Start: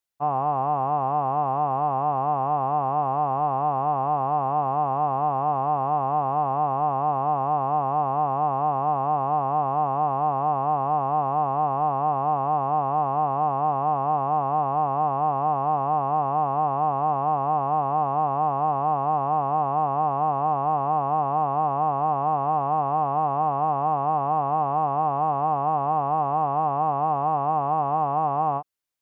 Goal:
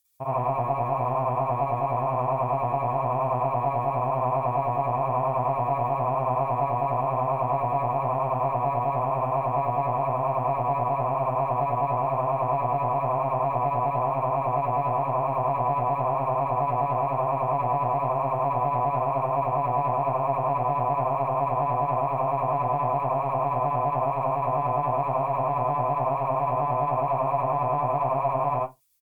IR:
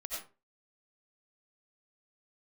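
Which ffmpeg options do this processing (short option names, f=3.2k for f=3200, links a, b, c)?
-filter_complex "[0:a]equalizer=f=70:w=0.37:g=14,asetrate=40440,aresample=44100,atempo=1.09051,crystalizer=i=8.5:c=0,acontrast=32,tremolo=f=9.8:d=0.89[a];[1:a]atrim=start_sample=2205,asetrate=79380,aresample=44100[b];[a][b]afir=irnorm=-1:irlink=0"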